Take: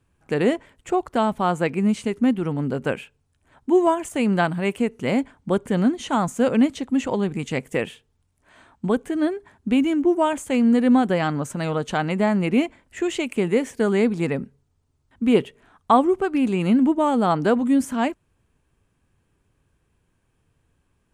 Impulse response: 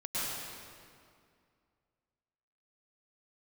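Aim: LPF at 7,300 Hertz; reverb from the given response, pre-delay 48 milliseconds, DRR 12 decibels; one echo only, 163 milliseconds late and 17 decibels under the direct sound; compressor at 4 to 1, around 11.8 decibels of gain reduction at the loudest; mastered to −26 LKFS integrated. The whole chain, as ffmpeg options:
-filter_complex "[0:a]lowpass=7300,acompressor=threshold=-27dB:ratio=4,aecho=1:1:163:0.141,asplit=2[link_01][link_02];[1:a]atrim=start_sample=2205,adelay=48[link_03];[link_02][link_03]afir=irnorm=-1:irlink=0,volume=-18dB[link_04];[link_01][link_04]amix=inputs=2:normalize=0,volume=4.5dB"

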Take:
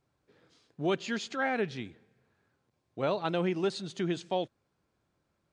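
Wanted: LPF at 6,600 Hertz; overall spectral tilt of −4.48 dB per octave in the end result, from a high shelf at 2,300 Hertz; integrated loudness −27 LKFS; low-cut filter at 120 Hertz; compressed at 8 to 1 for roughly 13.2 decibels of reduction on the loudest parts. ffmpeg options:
ffmpeg -i in.wav -af "highpass=120,lowpass=6600,highshelf=frequency=2300:gain=-4,acompressor=threshold=-39dB:ratio=8,volume=17.5dB" out.wav

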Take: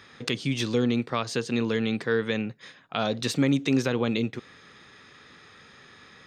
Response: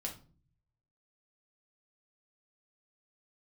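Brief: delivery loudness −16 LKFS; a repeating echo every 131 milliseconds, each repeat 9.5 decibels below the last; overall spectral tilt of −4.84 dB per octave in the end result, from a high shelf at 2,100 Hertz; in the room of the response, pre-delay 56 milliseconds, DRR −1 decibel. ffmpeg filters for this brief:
-filter_complex "[0:a]highshelf=frequency=2100:gain=6,aecho=1:1:131|262|393|524:0.335|0.111|0.0365|0.012,asplit=2[link_01][link_02];[1:a]atrim=start_sample=2205,adelay=56[link_03];[link_02][link_03]afir=irnorm=-1:irlink=0,volume=1.5dB[link_04];[link_01][link_04]amix=inputs=2:normalize=0,volume=4.5dB"

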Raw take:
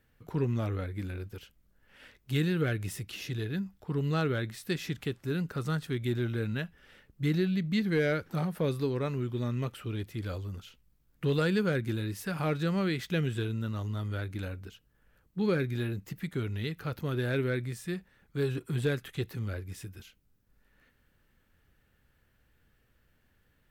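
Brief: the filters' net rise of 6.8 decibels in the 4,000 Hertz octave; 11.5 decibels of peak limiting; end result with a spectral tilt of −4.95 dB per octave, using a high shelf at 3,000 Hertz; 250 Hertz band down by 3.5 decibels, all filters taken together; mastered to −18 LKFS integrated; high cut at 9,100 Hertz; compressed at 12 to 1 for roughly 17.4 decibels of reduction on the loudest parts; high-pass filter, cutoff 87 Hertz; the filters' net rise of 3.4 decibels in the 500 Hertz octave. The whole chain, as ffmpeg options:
ffmpeg -i in.wav -af "highpass=87,lowpass=9100,equalizer=frequency=250:width_type=o:gain=-7.5,equalizer=frequency=500:width_type=o:gain=6.5,highshelf=frequency=3000:gain=3,equalizer=frequency=4000:width_type=o:gain=6,acompressor=threshold=-39dB:ratio=12,volume=29dB,alimiter=limit=-7.5dB:level=0:latency=1" out.wav

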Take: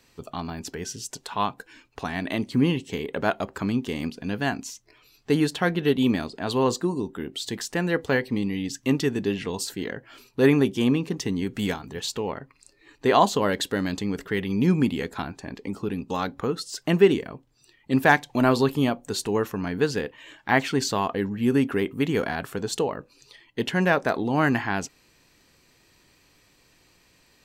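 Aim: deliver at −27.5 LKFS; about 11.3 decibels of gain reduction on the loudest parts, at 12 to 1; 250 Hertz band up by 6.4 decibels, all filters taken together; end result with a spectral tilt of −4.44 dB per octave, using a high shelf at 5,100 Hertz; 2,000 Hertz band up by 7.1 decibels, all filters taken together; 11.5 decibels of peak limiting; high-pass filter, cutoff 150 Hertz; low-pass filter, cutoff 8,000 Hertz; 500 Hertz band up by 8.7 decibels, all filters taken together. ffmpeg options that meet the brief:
ffmpeg -i in.wav -af "highpass=150,lowpass=8000,equalizer=frequency=250:width_type=o:gain=5.5,equalizer=frequency=500:width_type=o:gain=9,equalizer=frequency=2000:width_type=o:gain=7,highshelf=frequency=5100:gain=9,acompressor=threshold=-14dB:ratio=12,volume=-2dB,alimiter=limit=-16dB:level=0:latency=1" out.wav

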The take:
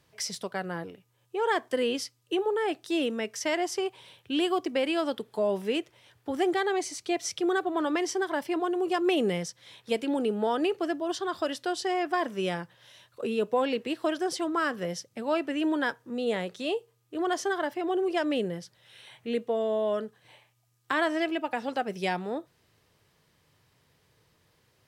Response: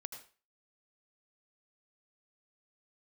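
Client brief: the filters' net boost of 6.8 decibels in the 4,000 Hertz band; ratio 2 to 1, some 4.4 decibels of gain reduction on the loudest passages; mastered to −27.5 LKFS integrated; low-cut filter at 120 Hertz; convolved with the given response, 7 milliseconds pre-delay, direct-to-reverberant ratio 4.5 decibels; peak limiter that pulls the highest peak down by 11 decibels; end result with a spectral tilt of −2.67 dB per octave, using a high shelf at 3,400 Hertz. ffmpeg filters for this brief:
-filter_complex "[0:a]highpass=120,highshelf=frequency=3400:gain=8.5,equalizer=frequency=4000:width_type=o:gain=3.5,acompressor=threshold=-29dB:ratio=2,alimiter=limit=-22.5dB:level=0:latency=1,asplit=2[link_01][link_02];[1:a]atrim=start_sample=2205,adelay=7[link_03];[link_02][link_03]afir=irnorm=-1:irlink=0,volume=-1.5dB[link_04];[link_01][link_04]amix=inputs=2:normalize=0,volume=4.5dB"

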